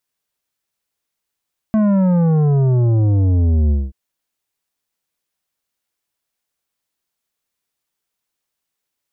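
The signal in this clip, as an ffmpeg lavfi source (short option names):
-f lavfi -i "aevalsrc='0.237*clip((2.18-t)/0.21,0,1)*tanh(3.16*sin(2*PI*220*2.18/log(65/220)*(exp(log(65/220)*t/2.18)-1)))/tanh(3.16)':d=2.18:s=44100"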